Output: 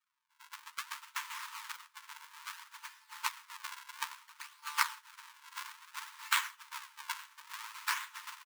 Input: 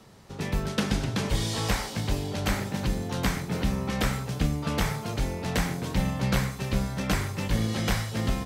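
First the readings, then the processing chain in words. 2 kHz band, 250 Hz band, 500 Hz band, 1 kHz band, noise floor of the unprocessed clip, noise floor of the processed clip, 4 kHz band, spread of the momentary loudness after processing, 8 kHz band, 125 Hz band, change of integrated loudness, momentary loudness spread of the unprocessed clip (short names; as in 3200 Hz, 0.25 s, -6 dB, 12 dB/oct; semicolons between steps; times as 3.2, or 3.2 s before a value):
-5.0 dB, under -40 dB, under -40 dB, -6.0 dB, -38 dBFS, -72 dBFS, -8.0 dB, 17 LU, -7.0 dB, under -40 dB, -11.0 dB, 3 LU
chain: decimation with a swept rate 41×, swing 160% 0.59 Hz; brick-wall FIR high-pass 870 Hz; echo 0.867 s -13 dB; non-linear reverb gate 0.17 s rising, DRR 11.5 dB; upward expander 2.5:1, over -48 dBFS; gain +5 dB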